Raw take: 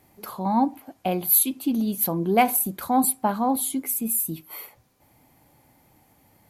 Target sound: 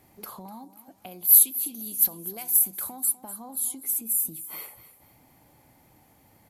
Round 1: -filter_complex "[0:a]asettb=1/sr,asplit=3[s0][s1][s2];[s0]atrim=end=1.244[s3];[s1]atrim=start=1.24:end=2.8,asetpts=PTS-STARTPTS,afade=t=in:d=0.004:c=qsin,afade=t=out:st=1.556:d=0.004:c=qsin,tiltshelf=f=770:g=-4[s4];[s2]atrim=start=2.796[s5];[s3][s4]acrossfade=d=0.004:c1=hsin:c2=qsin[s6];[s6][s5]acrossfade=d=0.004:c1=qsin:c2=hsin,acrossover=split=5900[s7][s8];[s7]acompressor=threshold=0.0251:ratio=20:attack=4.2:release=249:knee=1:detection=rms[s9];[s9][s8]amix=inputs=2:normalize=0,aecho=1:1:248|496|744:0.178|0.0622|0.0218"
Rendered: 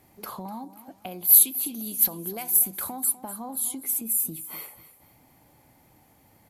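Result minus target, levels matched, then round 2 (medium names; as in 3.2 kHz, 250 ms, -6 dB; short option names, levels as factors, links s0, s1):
compression: peak gain reduction -5.5 dB
-filter_complex "[0:a]asettb=1/sr,asplit=3[s0][s1][s2];[s0]atrim=end=1.244[s3];[s1]atrim=start=1.24:end=2.8,asetpts=PTS-STARTPTS,afade=t=in:d=0.004:c=qsin,afade=t=out:st=1.556:d=0.004:c=qsin,tiltshelf=f=770:g=-4[s4];[s2]atrim=start=2.796[s5];[s3][s4]acrossfade=d=0.004:c1=hsin:c2=qsin[s6];[s6][s5]acrossfade=d=0.004:c1=qsin:c2=hsin,acrossover=split=5900[s7][s8];[s7]acompressor=threshold=0.0126:ratio=20:attack=4.2:release=249:knee=1:detection=rms[s9];[s9][s8]amix=inputs=2:normalize=0,aecho=1:1:248|496|744:0.178|0.0622|0.0218"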